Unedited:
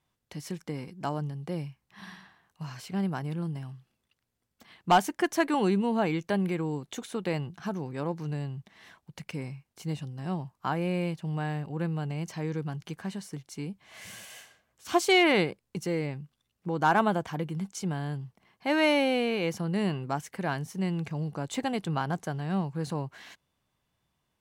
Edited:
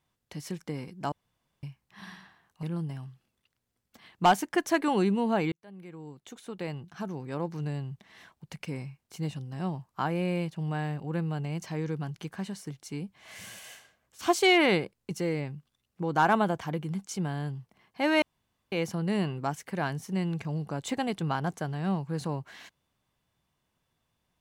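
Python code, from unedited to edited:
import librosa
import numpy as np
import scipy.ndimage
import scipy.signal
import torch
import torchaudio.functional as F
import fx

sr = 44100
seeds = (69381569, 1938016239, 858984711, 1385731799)

y = fx.edit(x, sr, fx.room_tone_fill(start_s=1.12, length_s=0.51),
    fx.cut(start_s=2.63, length_s=0.66),
    fx.fade_in_span(start_s=6.18, length_s=2.1),
    fx.room_tone_fill(start_s=18.88, length_s=0.5), tone=tone)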